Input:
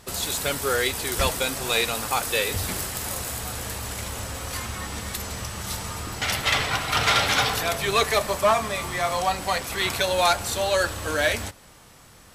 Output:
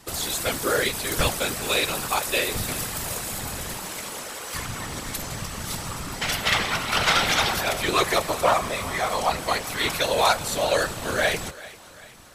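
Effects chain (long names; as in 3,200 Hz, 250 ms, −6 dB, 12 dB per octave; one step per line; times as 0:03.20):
0:03.76–0:04.53: high-pass filter 150 Hz → 370 Hz 12 dB per octave
random phases in short frames
on a send: feedback echo with a high-pass in the loop 392 ms, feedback 53%, high-pass 390 Hz, level −18 dB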